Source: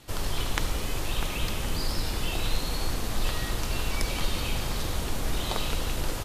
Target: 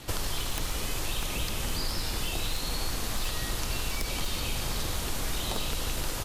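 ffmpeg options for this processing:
ffmpeg -i in.wav -filter_complex "[0:a]aeval=exprs='0.126*(abs(mod(val(0)/0.126+3,4)-2)-1)':channel_layout=same,acrossover=split=900|4000[link_01][link_02][link_03];[link_01]acompressor=threshold=-38dB:ratio=4[link_04];[link_02]acompressor=threshold=-48dB:ratio=4[link_05];[link_03]acompressor=threshold=-44dB:ratio=4[link_06];[link_04][link_05][link_06]amix=inputs=3:normalize=0,volume=7.5dB" out.wav

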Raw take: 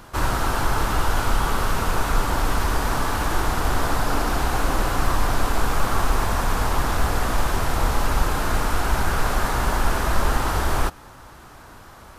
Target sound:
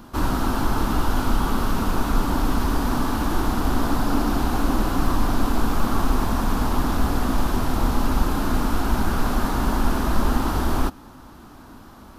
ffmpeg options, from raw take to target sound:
ffmpeg -i in.wav -af "equalizer=frequency=125:width_type=o:width=1:gain=-3,equalizer=frequency=250:width_type=o:width=1:gain=11,equalizer=frequency=500:width_type=o:width=1:gain=-5,equalizer=frequency=2000:width_type=o:width=1:gain=-7,equalizer=frequency=8000:width_type=o:width=1:gain=-6" out.wav

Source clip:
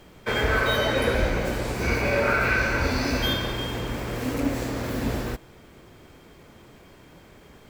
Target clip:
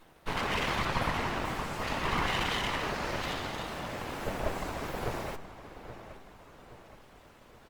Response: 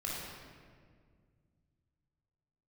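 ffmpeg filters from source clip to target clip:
-filter_complex "[0:a]acrossover=split=2500[link_01][link_02];[link_02]acompressor=threshold=-39dB:ratio=4:attack=1:release=60[link_03];[link_01][link_03]amix=inputs=2:normalize=0,highpass=190,acrossover=split=1300[link_04][link_05];[link_04]acontrast=21[link_06];[link_06][link_05]amix=inputs=2:normalize=0,afftfilt=real='hypot(re,im)*cos(2*PI*random(0))':imag='hypot(re,im)*sin(2*PI*random(1))':win_size=512:overlap=0.75,aeval=exprs='abs(val(0))':channel_layout=same,asplit=2[link_07][link_08];[link_08]adelay=823,lowpass=frequency=3000:poles=1,volume=-12dB,asplit=2[link_09][link_10];[link_10]adelay=823,lowpass=frequency=3000:poles=1,volume=0.47,asplit=2[link_11][link_12];[link_12]adelay=823,lowpass=frequency=3000:poles=1,volume=0.47,asplit=2[link_13][link_14];[link_14]adelay=823,lowpass=frequency=3000:poles=1,volume=0.47,asplit=2[link_15][link_16];[link_16]adelay=823,lowpass=frequency=3000:poles=1,volume=0.47[link_17];[link_09][link_11][link_13][link_15][link_17]amix=inputs=5:normalize=0[link_18];[link_07][link_18]amix=inputs=2:normalize=0" -ar 48000 -c:a libopus -b:a 32k

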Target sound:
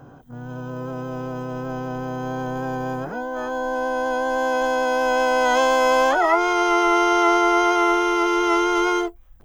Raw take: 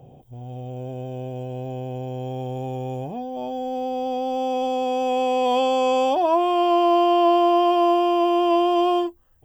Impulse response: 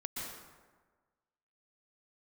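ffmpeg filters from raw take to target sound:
-filter_complex "[0:a]asplit=3[link_01][link_02][link_03];[link_02]asetrate=55563,aresample=44100,atempo=0.793701,volume=-9dB[link_04];[link_03]asetrate=88200,aresample=44100,atempo=0.5,volume=-3dB[link_05];[link_01][link_04][link_05]amix=inputs=3:normalize=0,asubboost=boost=6:cutoff=54"

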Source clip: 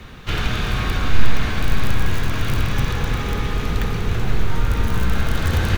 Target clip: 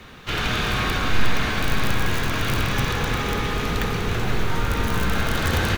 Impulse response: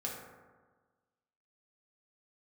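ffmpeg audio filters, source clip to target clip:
-af "lowshelf=frequency=140:gain=-10,dynaudnorm=framelen=260:gausssize=3:maxgain=4dB,volume=-1dB"

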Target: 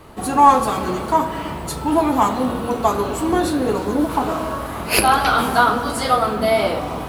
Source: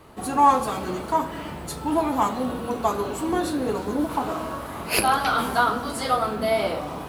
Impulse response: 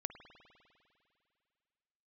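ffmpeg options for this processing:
-filter_complex "[0:a]asplit=2[link_01][link_02];[1:a]atrim=start_sample=2205,lowshelf=frequency=62:gain=8.5[link_03];[link_02][link_03]afir=irnorm=-1:irlink=0,volume=3.5dB[link_04];[link_01][link_04]amix=inputs=2:normalize=0,volume=-1dB"

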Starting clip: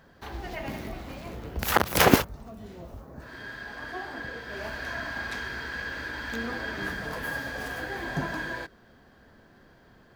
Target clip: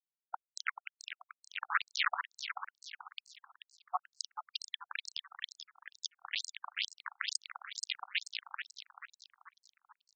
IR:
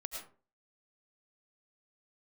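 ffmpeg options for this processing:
-filter_complex "[0:a]afftfilt=real='re*gte(hypot(re,im),0.0708)':imag='im*gte(hypot(re,im),0.0708)':win_size=1024:overlap=0.75,highshelf=frequency=2200:gain=-11,acompressor=threshold=-43dB:ratio=6,asplit=2[link_01][link_02];[link_02]asetrate=88200,aresample=44100,atempo=0.5,volume=-6dB[link_03];[link_01][link_03]amix=inputs=2:normalize=0,acompressor=mode=upward:threshold=-60dB:ratio=2.5,aeval=exprs='val(0)+0.000631*(sin(2*PI*60*n/s)+sin(2*PI*2*60*n/s)/2+sin(2*PI*3*60*n/s)/3+sin(2*PI*4*60*n/s)/4+sin(2*PI*5*60*n/s)/5)':channel_layout=same,acrusher=bits=5:mix=0:aa=0.000001,asplit=6[link_04][link_05][link_06][link_07][link_08][link_09];[link_05]adelay=435,afreqshift=140,volume=-9dB[link_10];[link_06]adelay=870,afreqshift=280,volume=-16.5dB[link_11];[link_07]adelay=1305,afreqshift=420,volume=-24.1dB[link_12];[link_08]adelay=1740,afreqshift=560,volume=-31.6dB[link_13];[link_09]adelay=2175,afreqshift=700,volume=-39.1dB[link_14];[link_04][link_10][link_11][link_12][link_13][link_14]amix=inputs=6:normalize=0,afftfilt=real='re*between(b*sr/1024,970*pow(6000/970,0.5+0.5*sin(2*PI*2.2*pts/sr))/1.41,970*pow(6000/970,0.5+0.5*sin(2*PI*2.2*pts/sr))*1.41)':imag='im*between(b*sr/1024,970*pow(6000/970,0.5+0.5*sin(2*PI*2.2*pts/sr))/1.41,970*pow(6000/970,0.5+0.5*sin(2*PI*2.2*pts/sr))*1.41)':win_size=1024:overlap=0.75,volume=18dB"

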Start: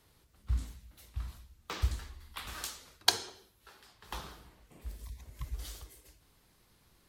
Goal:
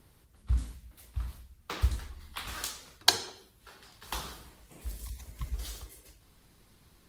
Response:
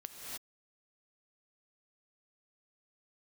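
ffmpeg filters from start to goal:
-filter_complex "[0:a]asettb=1/sr,asplit=3[link_01][link_02][link_03];[link_01]atrim=end=3.924[link_04];[link_02]atrim=start=3.92:end=5.32,asetpts=PTS-STARTPTS,afade=type=in:duration=0.004:curve=qsin,afade=type=out:start_time=1.396:duration=0.004:curve=qsin,equalizer=frequency=12000:width_type=o:width=2.3:gain=7[link_05];[link_03]atrim=start=5.316[link_06];[link_04][link_05]acrossfade=duration=0.004:curve1=hsin:curve2=qsin[link_07];[link_07][link_06]acrossfade=duration=0.004:curve1=qsin:curve2=hsin,acrossover=split=310[link_08][link_09];[link_08]acompressor=mode=upward:threshold=-59dB:ratio=2.5[link_10];[link_10][link_09]amix=inputs=2:normalize=0,volume=3.5dB" -ar 48000 -c:a libopus -b:a 32k

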